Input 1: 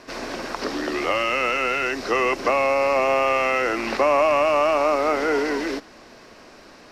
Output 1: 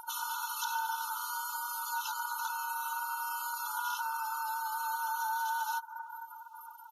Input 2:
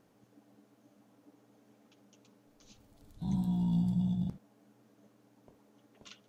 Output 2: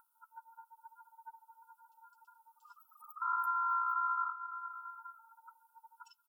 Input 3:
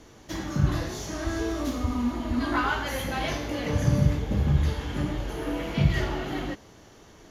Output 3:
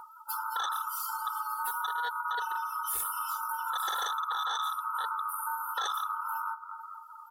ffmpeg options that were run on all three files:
-af "aexciter=amount=12.5:drive=3.7:freq=10k,highshelf=f=4.2k:g=3,asoftclip=type=tanh:threshold=-12dB,afftfilt=real='re*(1-between(b*sr/4096,330,3800))':imag='im*(1-between(b*sr/4096,330,3800))':win_size=4096:overlap=0.75,aecho=1:1:220|440|660|880|1100:0.141|0.0777|0.0427|0.0235|0.0129,aeval=exprs='val(0)*sin(2*PI*1200*n/s)':c=same,acompressor=mode=upward:threshold=-43dB:ratio=2.5,adynamicequalizer=threshold=0.01:dfrequency=1300:dqfactor=1.1:tfrequency=1300:tqfactor=1.1:attack=5:release=100:ratio=0.375:range=1.5:mode=boostabove:tftype=bell,aeval=exprs='0.0841*(abs(mod(val(0)/0.0841+3,4)-2)-1)':c=same,aecho=1:1:2.3:0.61,afftdn=nr=30:nf=-41,acompressor=threshold=-42dB:ratio=2.5,volume=6dB"

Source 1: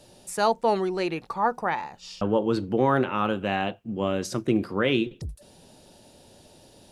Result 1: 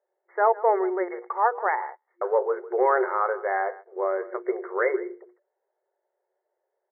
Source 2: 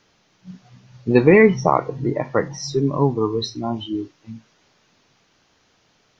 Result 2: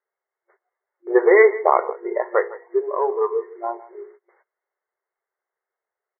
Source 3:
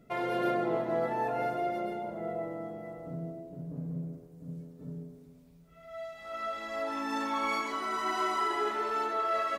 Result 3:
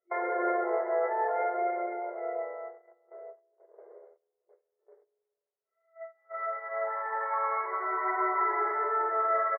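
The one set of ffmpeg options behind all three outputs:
-filter_complex "[0:a]bandreject=f=60:t=h:w=6,bandreject=f=120:t=h:w=6,bandreject=f=180:t=h:w=6,bandreject=f=240:t=h:w=6,bandreject=f=300:t=h:w=6,bandreject=f=360:t=h:w=6,bandreject=f=420:t=h:w=6,bandreject=f=480:t=h:w=6,aecho=1:1:158:0.112,agate=range=-25dB:threshold=-39dB:ratio=16:detection=peak,asplit=2[a][b];[b]asoftclip=type=tanh:threshold=-11dB,volume=-4.5dB[c];[a][c]amix=inputs=2:normalize=0,afftfilt=real='re*between(b*sr/4096,350,2200)':imag='im*between(b*sr/4096,350,2200)':win_size=4096:overlap=0.75,volume=-1.5dB"

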